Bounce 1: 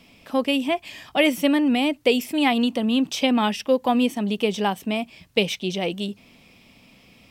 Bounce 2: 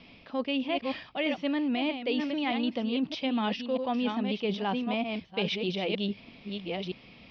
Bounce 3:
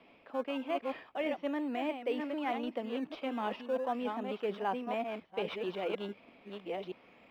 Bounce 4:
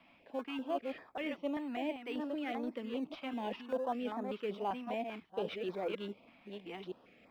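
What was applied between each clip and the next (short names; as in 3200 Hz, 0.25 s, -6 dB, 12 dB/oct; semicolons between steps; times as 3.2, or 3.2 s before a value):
reverse delay 0.629 s, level -8 dB; reverse; compressor, threshold -27 dBFS, peak gain reduction 13.5 dB; reverse; steep low-pass 4900 Hz 48 dB/oct
in parallel at -9.5 dB: decimation with a swept rate 16×, swing 100% 0.37 Hz; on the sum: three-band isolator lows -17 dB, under 310 Hz, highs -17 dB, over 2300 Hz; gain -3.5 dB
stepped notch 5.1 Hz 430–2900 Hz; gain -1 dB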